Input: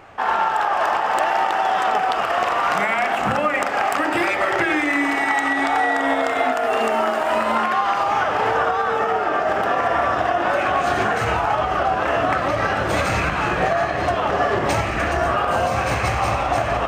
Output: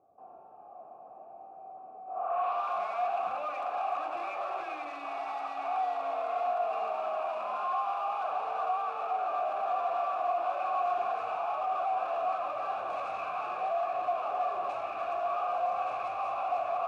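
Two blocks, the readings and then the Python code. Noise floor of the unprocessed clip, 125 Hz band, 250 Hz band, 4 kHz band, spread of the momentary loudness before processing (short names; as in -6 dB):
-23 dBFS, under -35 dB, -29.5 dB, -21.5 dB, 2 LU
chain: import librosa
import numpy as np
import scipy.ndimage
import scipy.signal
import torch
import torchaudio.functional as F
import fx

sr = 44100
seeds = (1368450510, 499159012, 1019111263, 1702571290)

y = fx.mod_noise(x, sr, seeds[0], snr_db=20)
y = 10.0 ** (-26.0 / 20.0) * np.tanh(y / 10.0 ** (-26.0 / 20.0))
y = fx.vowel_filter(y, sr, vowel='a')
y = fx.notch(y, sr, hz=3100.0, q=13.0)
y = fx.echo_split(y, sr, split_hz=1000.0, low_ms=118, high_ms=403, feedback_pct=52, wet_db=-13.0)
y = fx.filter_sweep_lowpass(y, sr, from_hz=320.0, to_hz=13000.0, start_s=2.05, end_s=2.7, q=0.79)
y = fx.dynamic_eq(y, sr, hz=1100.0, q=1.5, threshold_db=-48.0, ratio=4.0, max_db=5)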